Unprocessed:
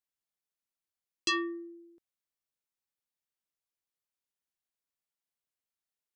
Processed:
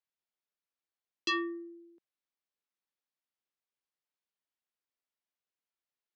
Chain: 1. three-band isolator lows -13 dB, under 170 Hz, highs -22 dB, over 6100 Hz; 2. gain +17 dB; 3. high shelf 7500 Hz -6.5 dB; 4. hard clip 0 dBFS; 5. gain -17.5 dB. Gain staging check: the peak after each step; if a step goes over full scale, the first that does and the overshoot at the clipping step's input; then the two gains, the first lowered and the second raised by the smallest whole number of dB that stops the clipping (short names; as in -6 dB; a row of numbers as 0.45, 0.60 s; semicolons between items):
-20.5, -3.5, -4.5, -4.5, -22.0 dBFS; no overload